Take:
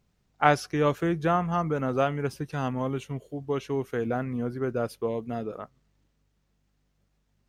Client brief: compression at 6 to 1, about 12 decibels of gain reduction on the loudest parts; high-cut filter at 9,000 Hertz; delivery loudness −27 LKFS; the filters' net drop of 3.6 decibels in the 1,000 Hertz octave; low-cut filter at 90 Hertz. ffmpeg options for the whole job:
ffmpeg -i in.wav -af "highpass=90,lowpass=9000,equalizer=frequency=1000:width_type=o:gain=-5.5,acompressor=threshold=-29dB:ratio=6,volume=8dB" out.wav

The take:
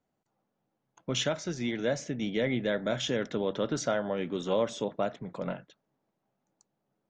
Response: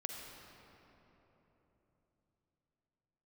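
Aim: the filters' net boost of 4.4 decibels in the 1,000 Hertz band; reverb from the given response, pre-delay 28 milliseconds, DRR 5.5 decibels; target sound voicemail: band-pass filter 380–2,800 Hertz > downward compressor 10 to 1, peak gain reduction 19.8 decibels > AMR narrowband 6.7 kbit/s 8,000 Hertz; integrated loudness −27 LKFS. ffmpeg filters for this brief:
-filter_complex "[0:a]equalizer=frequency=1000:width_type=o:gain=6.5,asplit=2[link_01][link_02];[1:a]atrim=start_sample=2205,adelay=28[link_03];[link_02][link_03]afir=irnorm=-1:irlink=0,volume=-5dB[link_04];[link_01][link_04]amix=inputs=2:normalize=0,highpass=380,lowpass=2800,acompressor=threshold=-41dB:ratio=10,volume=20.5dB" -ar 8000 -c:a libopencore_amrnb -b:a 6700

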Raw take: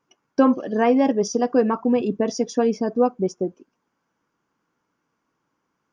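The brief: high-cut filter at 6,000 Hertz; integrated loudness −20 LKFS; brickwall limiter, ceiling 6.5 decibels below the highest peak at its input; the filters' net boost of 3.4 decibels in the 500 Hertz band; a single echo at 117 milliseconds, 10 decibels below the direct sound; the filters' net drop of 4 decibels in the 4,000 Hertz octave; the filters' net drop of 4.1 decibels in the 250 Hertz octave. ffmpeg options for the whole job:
ffmpeg -i in.wav -af "lowpass=6000,equalizer=frequency=250:width_type=o:gain=-5.5,equalizer=frequency=500:width_type=o:gain=5,equalizer=frequency=4000:width_type=o:gain=-4,alimiter=limit=-10.5dB:level=0:latency=1,aecho=1:1:117:0.316,volume=1.5dB" out.wav

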